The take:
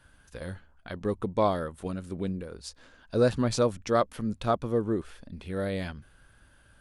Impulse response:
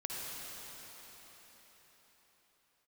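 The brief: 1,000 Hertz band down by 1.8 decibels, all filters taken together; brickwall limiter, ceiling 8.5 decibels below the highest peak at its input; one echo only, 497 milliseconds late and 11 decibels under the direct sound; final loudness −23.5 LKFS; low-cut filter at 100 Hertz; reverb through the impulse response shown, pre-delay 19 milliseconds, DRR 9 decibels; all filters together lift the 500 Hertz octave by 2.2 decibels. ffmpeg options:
-filter_complex "[0:a]highpass=100,equalizer=frequency=500:width_type=o:gain=3.5,equalizer=frequency=1000:width_type=o:gain=-4,alimiter=limit=-18.5dB:level=0:latency=1,aecho=1:1:497:0.282,asplit=2[link_01][link_02];[1:a]atrim=start_sample=2205,adelay=19[link_03];[link_02][link_03]afir=irnorm=-1:irlink=0,volume=-11.5dB[link_04];[link_01][link_04]amix=inputs=2:normalize=0,volume=8.5dB"

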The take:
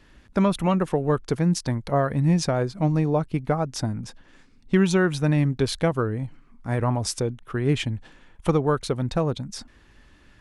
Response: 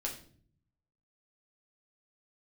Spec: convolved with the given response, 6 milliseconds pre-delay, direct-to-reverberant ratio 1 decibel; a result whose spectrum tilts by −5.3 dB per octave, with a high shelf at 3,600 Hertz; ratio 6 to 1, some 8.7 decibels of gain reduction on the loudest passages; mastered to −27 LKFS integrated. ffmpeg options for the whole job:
-filter_complex "[0:a]highshelf=frequency=3600:gain=8,acompressor=threshold=-25dB:ratio=6,asplit=2[link_01][link_02];[1:a]atrim=start_sample=2205,adelay=6[link_03];[link_02][link_03]afir=irnorm=-1:irlink=0,volume=-2dB[link_04];[link_01][link_04]amix=inputs=2:normalize=0"

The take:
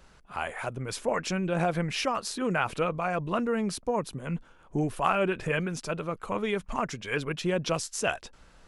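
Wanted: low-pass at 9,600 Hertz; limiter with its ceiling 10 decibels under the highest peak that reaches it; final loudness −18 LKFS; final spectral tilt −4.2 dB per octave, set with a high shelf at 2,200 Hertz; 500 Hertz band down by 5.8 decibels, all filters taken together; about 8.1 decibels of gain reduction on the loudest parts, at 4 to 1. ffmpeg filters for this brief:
ffmpeg -i in.wav -af "lowpass=9600,equalizer=frequency=500:width_type=o:gain=-7.5,highshelf=frequency=2200:gain=3.5,acompressor=threshold=-30dB:ratio=4,volume=19dB,alimiter=limit=-8dB:level=0:latency=1" out.wav

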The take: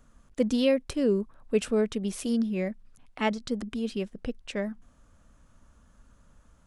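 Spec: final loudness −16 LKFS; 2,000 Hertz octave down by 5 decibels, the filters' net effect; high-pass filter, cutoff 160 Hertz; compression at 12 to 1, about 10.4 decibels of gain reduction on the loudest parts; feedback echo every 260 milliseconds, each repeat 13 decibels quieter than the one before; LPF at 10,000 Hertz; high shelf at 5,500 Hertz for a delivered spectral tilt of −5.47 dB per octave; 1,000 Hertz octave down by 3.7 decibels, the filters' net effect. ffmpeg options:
ffmpeg -i in.wav -af "highpass=160,lowpass=10000,equalizer=frequency=1000:width_type=o:gain=-3.5,equalizer=frequency=2000:width_type=o:gain=-4.5,highshelf=frequency=5500:gain=-5.5,acompressor=threshold=-30dB:ratio=12,aecho=1:1:260|520|780:0.224|0.0493|0.0108,volume=20.5dB" out.wav

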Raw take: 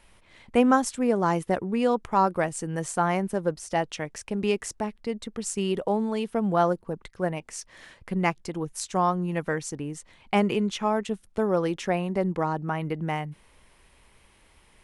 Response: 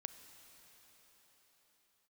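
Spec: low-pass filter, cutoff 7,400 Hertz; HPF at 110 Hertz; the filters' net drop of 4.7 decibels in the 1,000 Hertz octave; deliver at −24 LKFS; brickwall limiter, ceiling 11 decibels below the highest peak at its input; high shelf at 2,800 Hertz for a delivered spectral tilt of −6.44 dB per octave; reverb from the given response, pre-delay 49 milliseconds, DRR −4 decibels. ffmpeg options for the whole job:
-filter_complex "[0:a]highpass=110,lowpass=7400,equalizer=frequency=1000:width_type=o:gain=-5.5,highshelf=frequency=2800:gain=-6.5,alimiter=limit=-20.5dB:level=0:latency=1,asplit=2[link_01][link_02];[1:a]atrim=start_sample=2205,adelay=49[link_03];[link_02][link_03]afir=irnorm=-1:irlink=0,volume=8dB[link_04];[link_01][link_04]amix=inputs=2:normalize=0,volume=2dB"

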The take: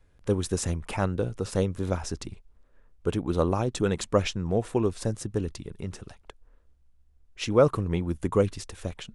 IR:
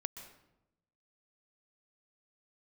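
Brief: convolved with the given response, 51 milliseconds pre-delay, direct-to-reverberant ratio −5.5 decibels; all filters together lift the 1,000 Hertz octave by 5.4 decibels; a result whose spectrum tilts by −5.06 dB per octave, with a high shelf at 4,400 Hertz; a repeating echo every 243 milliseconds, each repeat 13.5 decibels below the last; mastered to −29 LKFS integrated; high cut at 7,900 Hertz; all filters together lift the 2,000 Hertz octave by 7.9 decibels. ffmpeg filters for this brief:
-filter_complex "[0:a]lowpass=7900,equalizer=frequency=1000:width_type=o:gain=4,equalizer=frequency=2000:width_type=o:gain=7.5,highshelf=frequency=4400:gain=8.5,aecho=1:1:243|486:0.211|0.0444,asplit=2[link_01][link_02];[1:a]atrim=start_sample=2205,adelay=51[link_03];[link_02][link_03]afir=irnorm=-1:irlink=0,volume=7dB[link_04];[link_01][link_04]amix=inputs=2:normalize=0,volume=-9.5dB"

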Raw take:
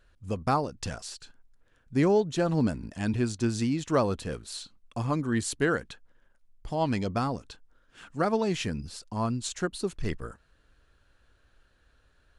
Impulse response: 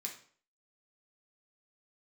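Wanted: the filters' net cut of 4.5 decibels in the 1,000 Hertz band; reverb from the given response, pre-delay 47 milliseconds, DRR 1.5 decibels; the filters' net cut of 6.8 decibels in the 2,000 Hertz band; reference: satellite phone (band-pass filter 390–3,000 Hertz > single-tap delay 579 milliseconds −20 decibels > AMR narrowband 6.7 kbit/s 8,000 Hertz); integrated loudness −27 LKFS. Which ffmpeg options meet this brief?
-filter_complex "[0:a]equalizer=frequency=1000:width_type=o:gain=-4,equalizer=frequency=2000:width_type=o:gain=-7,asplit=2[link_01][link_02];[1:a]atrim=start_sample=2205,adelay=47[link_03];[link_02][link_03]afir=irnorm=-1:irlink=0,volume=0dB[link_04];[link_01][link_04]amix=inputs=2:normalize=0,highpass=390,lowpass=3000,aecho=1:1:579:0.1,volume=7dB" -ar 8000 -c:a libopencore_amrnb -b:a 6700

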